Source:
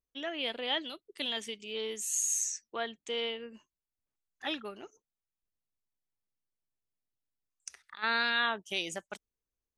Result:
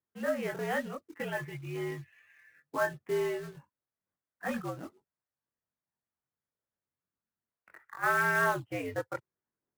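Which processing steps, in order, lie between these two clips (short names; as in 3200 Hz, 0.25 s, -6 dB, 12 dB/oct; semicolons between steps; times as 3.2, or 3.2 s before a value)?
1–2.91 comb 5.5 ms, depth 73%; mistuned SSB -68 Hz 160–2000 Hz; short-mantissa float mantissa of 2-bit; chorus voices 4, 0.4 Hz, delay 22 ms, depth 1.1 ms; gain +8 dB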